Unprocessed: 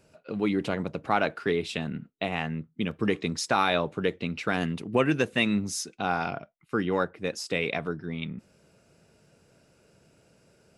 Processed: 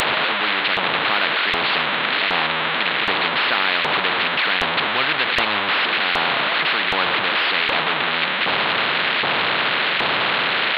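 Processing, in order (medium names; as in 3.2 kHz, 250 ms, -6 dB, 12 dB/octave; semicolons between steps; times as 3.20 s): one-bit delta coder 16 kbps, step -21.5 dBFS; LFO high-pass saw up 1.3 Hz 860–2000 Hz; spectrum-flattening compressor 4:1; trim +5.5 dB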